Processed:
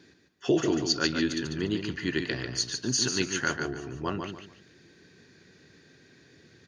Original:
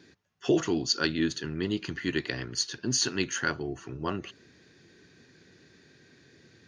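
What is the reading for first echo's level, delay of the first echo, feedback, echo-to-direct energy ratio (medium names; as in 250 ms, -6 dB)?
-6.0 dB, 145 ms, 27%, -5.5 dB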